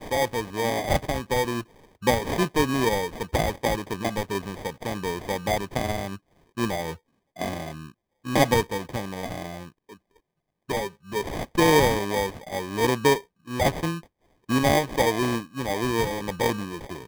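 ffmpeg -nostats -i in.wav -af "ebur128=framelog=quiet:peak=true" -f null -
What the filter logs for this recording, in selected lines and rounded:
Integrated loudness:
  I:         -25.9 LUFS
  Threshold: -36.5 LUFS
Loudness range:
  LRA:         6.2 LU
  Threshold: -46.6 LUFS
  LRA low:   -30.3 LUFS
  LRA high:  -24.0 LUFS
True peak:
  Peak:       -5.6 dBFS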